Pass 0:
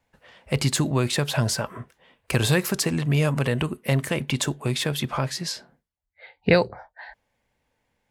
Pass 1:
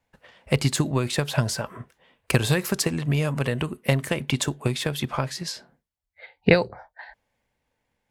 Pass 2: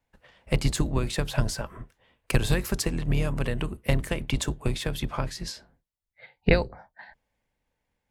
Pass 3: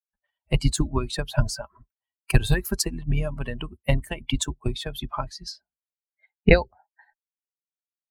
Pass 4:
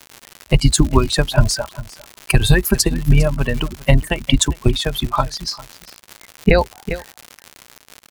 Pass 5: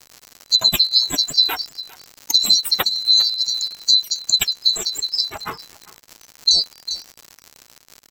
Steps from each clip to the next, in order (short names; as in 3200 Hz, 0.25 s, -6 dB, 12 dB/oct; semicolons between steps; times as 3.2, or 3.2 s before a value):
transient shaper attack +7 dB, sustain +2 dB; gain -3.5 dB
octaver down 2 oct, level +2 dB; gain -4.5 dB
per-bin expansion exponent 2; gain +7 dB
crackle 150/s -34 dBFS; echo 0.4 s -20.5 dB; maximiser +12.5 dB; gain -1 dB
band-swap scrambler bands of 4000 Hz; gain -3.5 dB